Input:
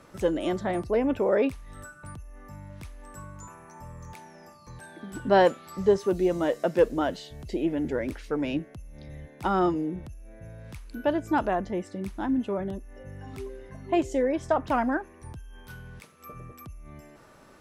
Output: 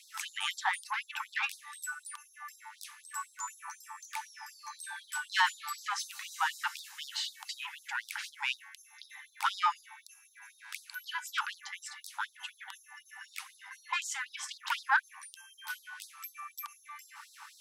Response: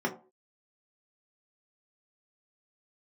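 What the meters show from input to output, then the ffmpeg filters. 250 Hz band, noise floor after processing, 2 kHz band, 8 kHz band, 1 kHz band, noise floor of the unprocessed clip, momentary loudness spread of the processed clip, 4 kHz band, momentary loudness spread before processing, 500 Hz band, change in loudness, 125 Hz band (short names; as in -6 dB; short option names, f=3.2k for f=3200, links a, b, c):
under -40 dB, -63 dBFS, +4.0 dB, n/a, -4.5 dB, -53 dBFS, 19 LU, +6.5 dB, 21 LU, under -40 dB, -9.5 dB, under -40 dB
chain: -filter_complex "[0:a]asplit=2[a][b];[b]highpass=f=720:p=1,volume=18dB,asoftclip=type=tanh:threshold=-8dB[c];[a][c]amix=inputs=2:normalize=0,lowpass=f=2.4k:p=1,volume=-6dB,acrossover=split=330|680|4200[d][e][f][g];[d]dynaudnorm=f=200:g=9:m=9.5dB[h];[h][e][f][g]amix=inputs=4:normalize=0,lowshelf=f=360:t=q:w=3:g=-13.5,crystalizer=i=2:c=0,afftfilt=real='re*gte(b*sr/1024,770*pow(3700/770,0.5+0.5*sin(2*PI*4*pts/sr)))':imag='im*gte(b*sr/1024,770*pow(3700/770,0.5+0.5*sin(2*PI*4*pts/sr)))':win_size=1024:overlap=0.75,volume=-3dB"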